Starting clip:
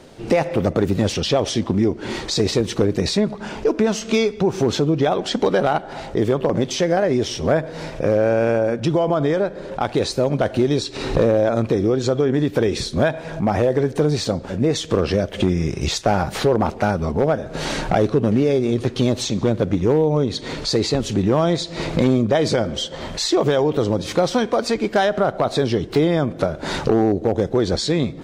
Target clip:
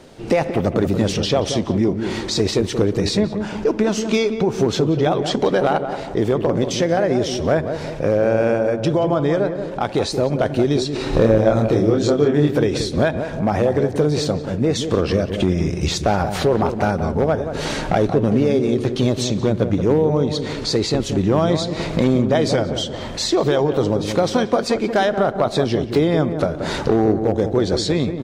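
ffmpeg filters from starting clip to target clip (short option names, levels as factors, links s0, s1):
-filter_complex "[0:a]asettb=1/sr,asplit=3[s0][s1][s2];[s0]atrim=end=11.104[s3];[s1]atrim=start=11.1:end=12.53,asetpts=PTS-STARTPTS,afade=t=in:d=0.004:c=qsin,afade=t=out:st=1.426:d=0.004:c=qsin,asplit=2[s4][s5];[s5]adelay=27,volume=0.708[s6];[s4][s6]amix=inputs=2:normalize=0,atrim=end_sample=63063[s7];[s2]atrim=start=12.526[s8];[s3][s7]acrossfade=d=0.004:c1=hsin:c2=qsin[s9];[s9][s8]acrossfade=d=0.004:c1=qsin:c2=hsin,asplit=2[s10][s11];[s11]adelay=180,lowpass=f=990:p=1,volume=0.447,asplit=2[s12][s13];[s13]adelay=180,lowpass=f=990:p=1,volume=0.5,asplit=2[s14][s15];[s15]adelay=180,lowpass=f=990:p=1,volume=0.5,asplit=2[s16][s17];[s17]adelay=180,lowpass=f=990:p=1,volume=0.5,asplit=2[s18][s19];[s19]adelay=180,lowpass=f=990:p=1,volume=0.5,asplit=2[s20][s21];[s21]adelay=180,lowpass=f=990:p=1,volume=0.5[s22];[s12][s14][s16][s18][s20][s22]amix=inputs=6:normalize=0[s23];[s10][s23]amix=inputs=2:normalize=0"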